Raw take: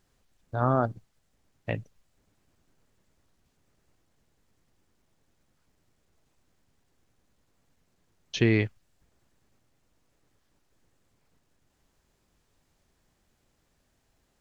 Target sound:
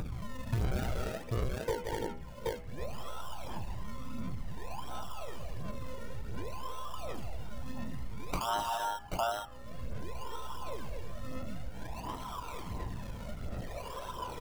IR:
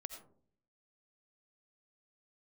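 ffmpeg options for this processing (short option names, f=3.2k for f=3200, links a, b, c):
-filter_complex "[0:a]afftfilt=real='real(if(between(b,1,1008),(2*floor((b-1)/48)+1)*48-b,b),0)':imag='imag(if(between(b,1,1008),(2*floor((b-1)/48)+1)*48-b,b),0)*if(between(b,1,1008),-1,1)':win_size=2048:overlap=0.75,acrusher=samples=38:mix=1:aa=0.000001:lfo=1:lforange=38:lforate=0.55,asplit=2[a][b];[b]aecho=0:1:160|237|316|779:0.251|0.473|0.251|0.2[c];[a][c]amix=inputs=2:normalize=0,flanger=delay=0.8:depth=1.4:regen=28:speed=0.24:shape=triangular,alimiter=limit=-24dB:level=0:latency=1:release=189,acompressor=mode=upward:threshold=-40dB:ratio=2.5,aeval=exprs='val(0)+0.000447*(sin(2*PI*60*n/s)+sin(2*PI*2*60*n/s)/2+sin(2*PI*3*60*n/s)/3+sin(2*PI*4*60*n/s)/4+sin(2*PI*5*60*n/s)/5)':c=same,highshelf=f=2.1k:g=-3.5,bandreject=f=81.15:t=h:w=4,bandreject=f=162.3:t=h:w=4,bandreject=f=243.45:t=h:w=4,bandreject=f=324.6:t=h:w=4,bandreject=f=405.75:t=h:w=4,bandreject=f=486.9:t=h:w=4,bandreject=f=568.05:t=h:w=4,bandreject=f=649.2:t=h:w=4,bandreject=f=730.35:t=h:w=4,bandreject=f=811.5:t=h:w=4,bandreject=f=892.65:t=h:w=4,bandreject=f=973.8:t=h:w=4,bandreject=f=1.05495k:t=h:w=4,bandreject=f=1.1361k:t=h:w=4,bandreject=f=1.21725k:t=h:w=4,bandreject=f=1.2984k:t=h:w=4,bandreject=f=1.37955k:t=h:w=4,bandreject=f=1.4607k:t=h:w=4,bandreject=f=1.54185k:t=h:w=4,bandreject=f=1.623k:t=h:w=4,bandreject=f=1.70415k:t=h:w=4,bandreject=f=1.7853k:t=h:w=4,bandreject=f=1.86645k:t=h:w=4,bandreject=f=1.9476k:t=h:w=4,bandreject=f=2.02875k:t=h:w=4,bandreject=f=2.1099k:t=h:w=4,bandreject=f=2.19105k:t=h:w=4,bandreject=f=2.2722k:t=h:w=4,bandreject=f=2.35335k:t=h:w=4,bandreject=f=2.4345k:t=h:w=4,bandreject=f=2.51565k:t=h:w=4,bandreject=f=2.5968k:t=h:w=4,bandreject=f=2.67795k:t=h:w=4,bandreject=f=2.7591k:t=h:w=4,bandreject=f=2.84025k:t=h:w=4,bandreject=f=2.9214k:t=h:w=4,bandreject=f=3.00255k:t=h:w=4,bandreject=f=3.0837k:t=h:w=4,asoftclip=type=tanh:threshold=-27dB,acompressor=threshold=-46dB:ratio=8,aphaser=in_gain=1:out_gain=1:delay=2.2:decay=0.41:speed=1.4:type=sinusoidal,volume=13.5dB"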